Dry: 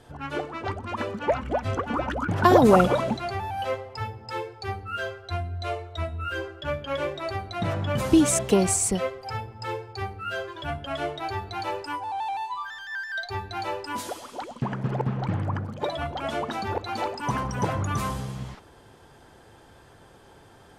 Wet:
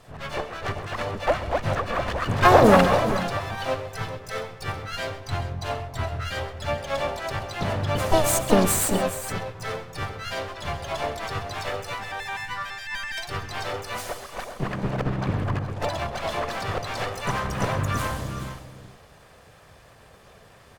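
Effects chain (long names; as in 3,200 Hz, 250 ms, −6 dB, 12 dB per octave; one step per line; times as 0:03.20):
lower of the sound and its delayed copy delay 1.7 ms
pitch-shifted copies added −12 semitones −16 dB, +3 semitones −8 dB, +7 semitones −7 dB
multi-tap delay 132/401/414/424 ms −15.5/−19/−18.5/−13.5 dB
level +1 dB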